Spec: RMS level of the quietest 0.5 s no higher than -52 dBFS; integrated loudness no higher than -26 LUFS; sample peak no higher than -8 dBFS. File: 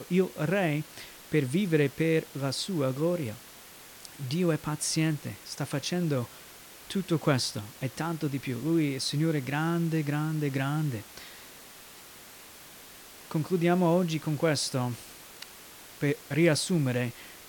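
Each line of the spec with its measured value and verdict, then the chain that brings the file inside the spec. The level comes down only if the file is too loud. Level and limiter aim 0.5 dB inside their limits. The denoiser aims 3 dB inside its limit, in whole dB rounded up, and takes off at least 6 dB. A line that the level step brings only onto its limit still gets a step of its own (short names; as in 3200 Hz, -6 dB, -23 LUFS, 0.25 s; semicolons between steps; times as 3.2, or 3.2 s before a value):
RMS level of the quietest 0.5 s -49 dBFS: fail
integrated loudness -29.0 LUFS: OK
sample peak -11.0 dBFS: OK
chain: denoiser 6 dB, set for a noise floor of -49 dBFS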